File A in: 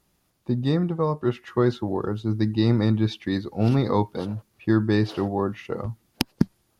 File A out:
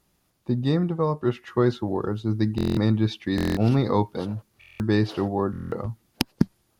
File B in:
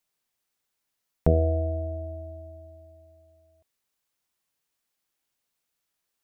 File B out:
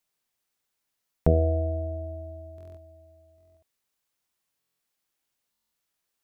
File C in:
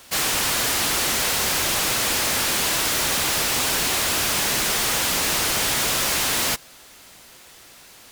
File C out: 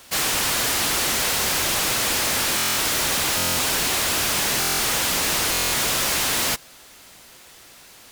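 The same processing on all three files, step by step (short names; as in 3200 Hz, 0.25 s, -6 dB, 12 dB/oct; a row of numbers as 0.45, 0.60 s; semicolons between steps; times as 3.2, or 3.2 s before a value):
stuck buffer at 2.56/3.36/4.59/5.51, samples 1024, times 8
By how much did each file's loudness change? -0.5, 0.0, 0.0 LU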